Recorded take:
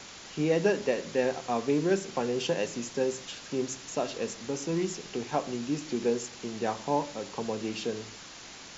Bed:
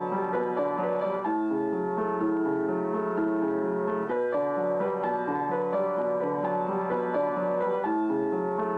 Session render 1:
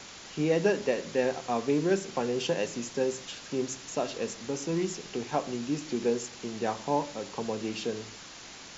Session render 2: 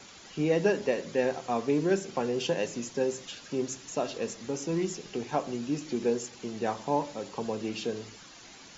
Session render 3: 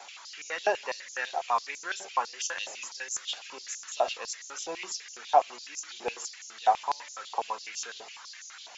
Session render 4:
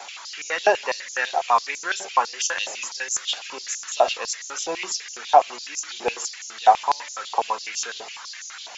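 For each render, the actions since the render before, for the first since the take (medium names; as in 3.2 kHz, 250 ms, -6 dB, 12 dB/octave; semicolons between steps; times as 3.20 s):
no audible change
noise reduction 8 dB, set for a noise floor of -47 dBFS
step-sequenced high-pass 12 Hz 750–6300 Hz
trim +8.5 dB; peak limiter -3 dBFS, peak gain reduction 2.5 dB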